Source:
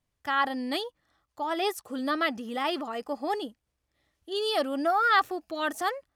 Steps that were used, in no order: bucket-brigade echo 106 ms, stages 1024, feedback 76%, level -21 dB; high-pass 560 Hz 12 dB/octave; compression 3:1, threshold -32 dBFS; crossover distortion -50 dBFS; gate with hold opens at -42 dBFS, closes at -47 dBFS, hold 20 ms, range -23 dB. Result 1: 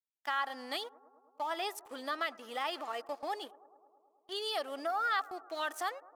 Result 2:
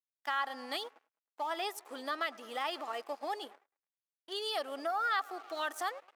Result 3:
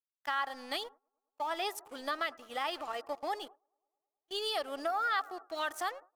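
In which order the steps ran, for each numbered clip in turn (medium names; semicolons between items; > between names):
crossover distortion > compression > high-pass > gate with hold > bucket-brigade echo; bucket-brigade echo > crossover distortion > compression > gate with hold > high-pass; high-pass > crossover distortion > compression > bucket-brigade echo > gate with hold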